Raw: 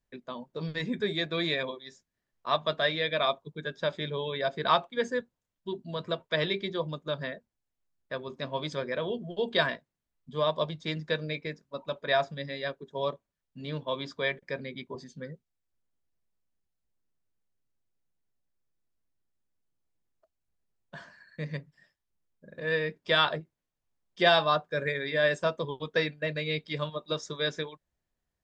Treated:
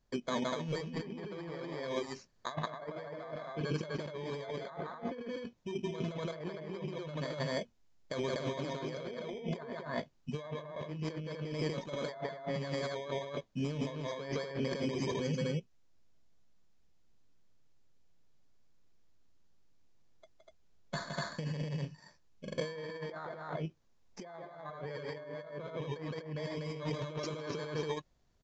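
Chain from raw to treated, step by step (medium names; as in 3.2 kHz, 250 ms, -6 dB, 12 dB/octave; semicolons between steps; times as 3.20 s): bit-reversed sample order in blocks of 16 samples; loudspeakers at several distances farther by 57 m -5 dB, 84 m 0 dB; low-pass that closes with the level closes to 1.6 kHz, closed at -20.5 dBFS; compressor with a negative ratio -40 dBFS, ratio -1; resampled via 16 kHz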